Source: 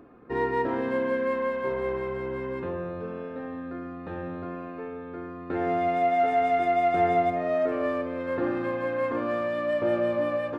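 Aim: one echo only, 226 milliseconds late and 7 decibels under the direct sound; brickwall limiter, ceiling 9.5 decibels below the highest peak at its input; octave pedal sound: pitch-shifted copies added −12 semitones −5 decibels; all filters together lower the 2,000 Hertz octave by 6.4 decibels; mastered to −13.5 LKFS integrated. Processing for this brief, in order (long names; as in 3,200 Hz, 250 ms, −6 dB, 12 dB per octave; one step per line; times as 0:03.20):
parametric band 2,000 Hz −7.5 dB
brickwall limiter −24 dBFS
single-tap delay 226 ms −7 dB
pitch-shifted copies added −12 semitones −5 dB
level +16.5 dB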